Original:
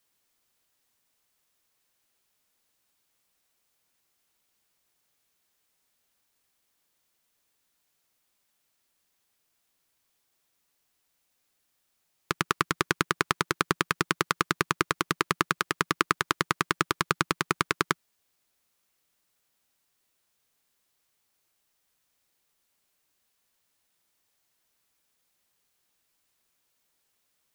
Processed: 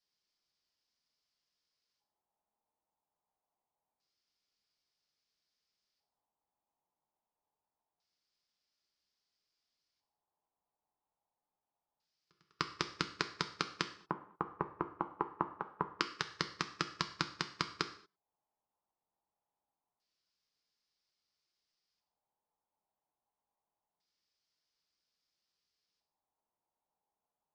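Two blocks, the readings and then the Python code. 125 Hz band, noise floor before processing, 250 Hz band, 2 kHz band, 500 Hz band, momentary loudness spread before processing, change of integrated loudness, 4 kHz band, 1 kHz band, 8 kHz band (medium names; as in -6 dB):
-11.5 dB, -75 dBFS, -11.5 dB, -14.0 dB, -11.5 dB, 1 LU, -11.0 dB, -8.0 dB, -11.0 dB, -15.5 dB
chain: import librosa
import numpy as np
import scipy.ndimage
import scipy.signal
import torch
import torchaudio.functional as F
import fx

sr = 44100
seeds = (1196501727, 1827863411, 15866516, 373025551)

p1 = scipy.signal.sosfilt(scipy.signal.ellip(4, 1.0, 40, 9300.0, 'lowpass', fs=sr, output='sos'), x)
p2 = fx.high_shelf(p1, sr, hz=2000.0, db=-4.0)
p3 = fx.level_steps(p2, sr, step_db=16)
p4 = p2 + (p3 * librosa.db_to_amplitude(3.0))
p5 = fx.filter_lfo_lowpass(p4, sr, shape='square', hz=0.25, low_hz=860.0, high_hz=5000.0, q=4.8)
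p6 = fx.auto_swell(p5, sr, attack_ms=376.0)
p7 = fx.rev_gated(p6, sr, seeds[0], gate_ms=260, shape='falling', drr_db=3.0)
p8 = fx.upward_expand(p7, sr, threshold_db=-56.0, expansion=1.5)
y = p8 * librosa.db_to_amplitude(-1.5)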